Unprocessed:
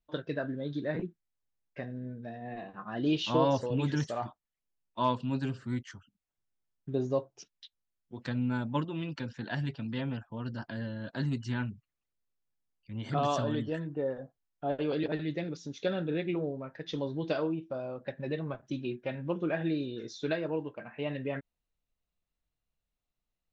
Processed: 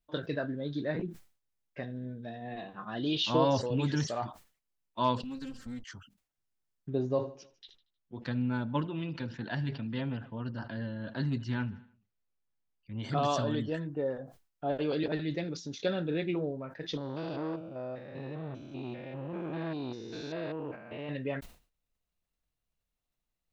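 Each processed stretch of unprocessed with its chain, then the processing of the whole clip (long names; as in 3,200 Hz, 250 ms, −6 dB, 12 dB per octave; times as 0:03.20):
0:01.83–0:03.24: parametric band 3,500 Hz +10.5 dB 0.42 octaves + downward compressor 1.5 to 1, threshold −33 dBFS
0:05.23–0:05.84: lower of the sound and its delayed copy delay 3.8 ms + bass and treble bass +8 dB, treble +10 dB + downward compressor 3 to 1, threshold −41 dBFS
0:06.90–0:12.99: high-frequency loss of the air 120 metres + repeating echo 78 ms, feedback 59%, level −22.5 dB
0:16.97–0:21.09: spectrum averaged block by block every 200 ms + saturating transformer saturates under 600 Hz
whole clip: dynamic equaliser 4,600 Hz, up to +5 dB, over −59 dBFS, Q 2.1; level that may fall only so fast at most 140 dB per second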